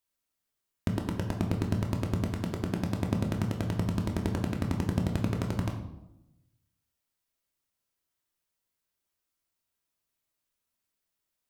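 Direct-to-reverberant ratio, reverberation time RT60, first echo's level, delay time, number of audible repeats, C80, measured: 1.0 dB, 0.90 s, none, none, none, 9.5 dB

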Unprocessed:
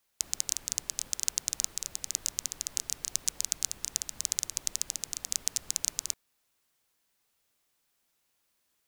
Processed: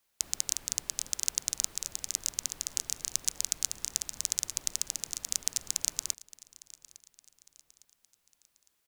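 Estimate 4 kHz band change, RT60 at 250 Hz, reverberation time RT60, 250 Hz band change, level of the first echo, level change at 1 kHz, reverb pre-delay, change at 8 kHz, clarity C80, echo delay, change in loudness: 0.0 dB, none, none, 0.0 dB, -20.5 dB, 0.0 dB, none, 0.0 dB, none, 0.857 s, 0.0 dB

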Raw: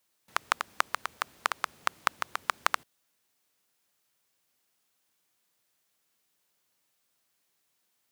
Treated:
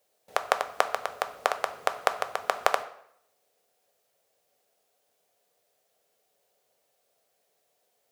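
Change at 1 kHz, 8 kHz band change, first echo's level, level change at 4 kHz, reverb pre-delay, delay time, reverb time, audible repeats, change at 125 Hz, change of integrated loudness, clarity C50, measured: +3.5 dB, +0.5 dB, none, +0.5 dB, 4 ms, none, 0.70 s, none, n/a, +3.0 dB, 13.5 dB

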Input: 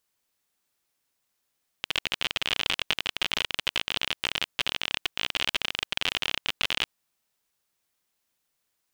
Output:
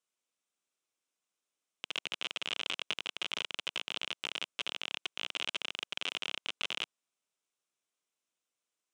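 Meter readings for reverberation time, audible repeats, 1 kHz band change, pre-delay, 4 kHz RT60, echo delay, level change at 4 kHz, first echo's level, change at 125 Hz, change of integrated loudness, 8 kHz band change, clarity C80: none, none, -9.0 dB, none, none, none, -8.5 dB, none, -17.5 dB, -8.5 dB, -8.5 dB, none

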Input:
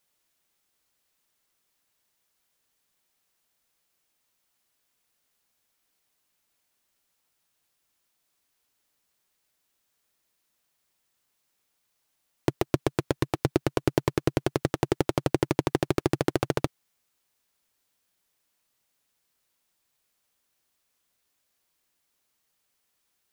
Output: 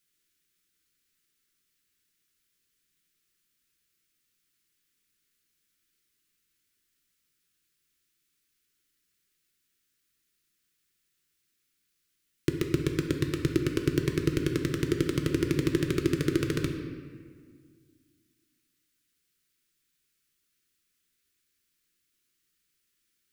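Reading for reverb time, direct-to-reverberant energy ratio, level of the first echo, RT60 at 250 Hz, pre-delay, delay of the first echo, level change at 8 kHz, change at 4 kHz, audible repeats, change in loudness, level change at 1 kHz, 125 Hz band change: 1.8 s, 3.5 dB, none, 2.6 s, 3 ms, none, -0.5 dB, -0.5 dB, none, -1.0 dB, -12.5 dB, +0.5 dB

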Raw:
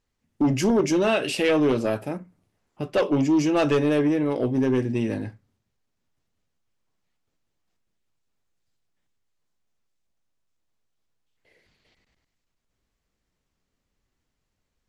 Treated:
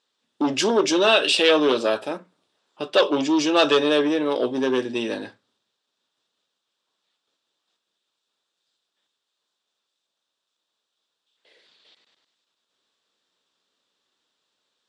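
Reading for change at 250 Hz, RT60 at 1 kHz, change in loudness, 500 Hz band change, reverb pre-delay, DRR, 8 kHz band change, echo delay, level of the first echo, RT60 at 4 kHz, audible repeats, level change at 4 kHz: -1.5 dB, none, +2.5 dB, +3.0 dB, none, none, +5.0 dB, none, none, none, none, +12.0 dB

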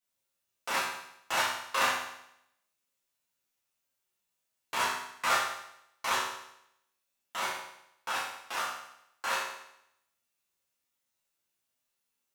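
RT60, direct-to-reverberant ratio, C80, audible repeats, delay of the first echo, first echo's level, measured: 0.75 s, -10.0 dB, 5.0 dB, none, none, none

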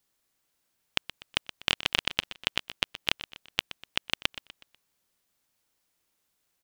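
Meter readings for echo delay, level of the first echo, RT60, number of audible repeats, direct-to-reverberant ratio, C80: 0.123 s, -14.0 dB, none, 3, none, none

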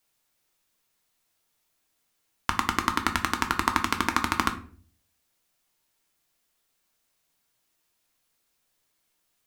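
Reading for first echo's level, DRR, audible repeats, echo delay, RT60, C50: none, 5.0 dB, none, none, 0.45 s, 13.0 dB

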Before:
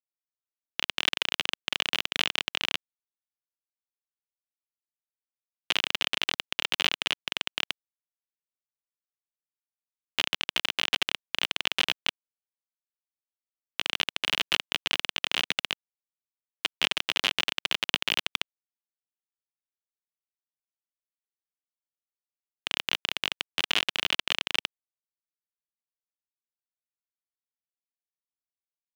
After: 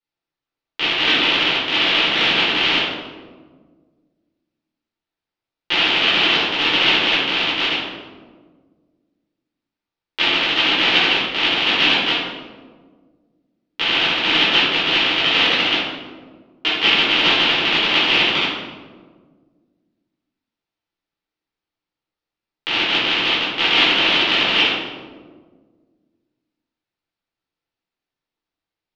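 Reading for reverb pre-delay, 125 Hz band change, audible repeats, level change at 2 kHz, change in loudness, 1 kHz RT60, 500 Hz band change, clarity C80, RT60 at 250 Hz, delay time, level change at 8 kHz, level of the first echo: 5 ms, +18.5 dB, none, +13.5 dB, +13.0 dB, 1.3 s, +16.5 dB, 2.0 dB, 2.1 s, none, 0.0 dB, none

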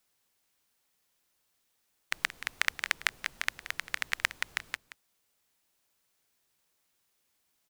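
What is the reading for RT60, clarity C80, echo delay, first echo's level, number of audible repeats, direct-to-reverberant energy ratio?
none, none, 0.177 s, -14.0 dB, 1, none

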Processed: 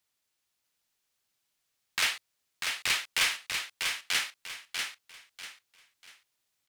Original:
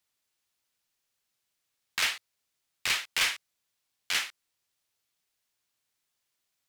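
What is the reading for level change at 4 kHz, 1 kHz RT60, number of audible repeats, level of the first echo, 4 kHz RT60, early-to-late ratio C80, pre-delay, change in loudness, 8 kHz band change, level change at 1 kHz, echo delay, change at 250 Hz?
+1.5 dB, none, 3, -5.0 dB, none, none, none, -1.0 dB, +2.0 dB, +1.5 dB, 0.643 s, +1.5 dB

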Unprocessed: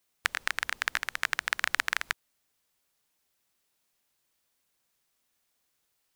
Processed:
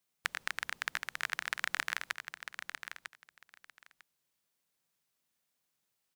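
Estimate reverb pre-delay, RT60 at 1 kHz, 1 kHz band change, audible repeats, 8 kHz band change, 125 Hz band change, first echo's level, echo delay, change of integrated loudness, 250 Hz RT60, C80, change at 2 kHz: none, none, -6.0 dB, 2, -6.0 dB, n/a, -8.5 dB, 0.949 s, -7.0 dB, none, none, -6.0 dB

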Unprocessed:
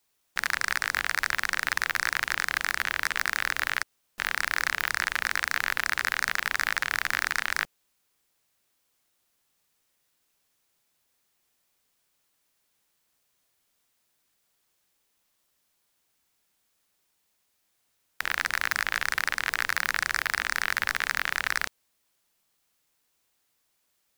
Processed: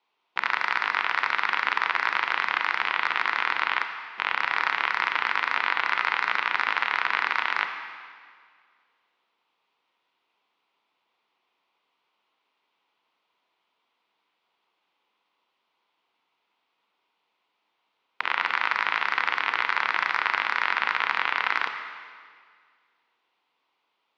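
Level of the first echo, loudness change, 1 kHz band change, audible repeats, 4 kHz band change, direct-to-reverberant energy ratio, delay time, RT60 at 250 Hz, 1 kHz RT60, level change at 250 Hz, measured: none, +2.5 dB, +7.5 dB, none, +0.5 dB, 6.0 dB, none, 2.0 s, 1.9 s, 0.0 dB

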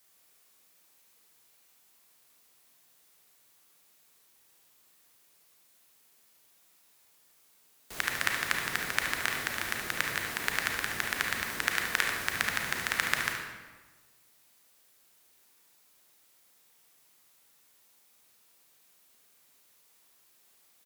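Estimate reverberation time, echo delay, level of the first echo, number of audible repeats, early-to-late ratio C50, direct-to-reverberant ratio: 1.3 s, 72 ms, -8.5 dB, 1, 1.5 dB, 0.5 dB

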